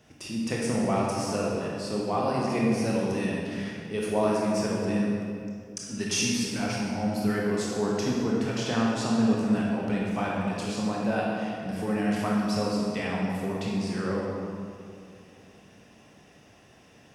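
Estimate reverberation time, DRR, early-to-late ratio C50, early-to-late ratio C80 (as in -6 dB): 2.4 s, -4.0 dB, -1.5 dB, 0.5 dB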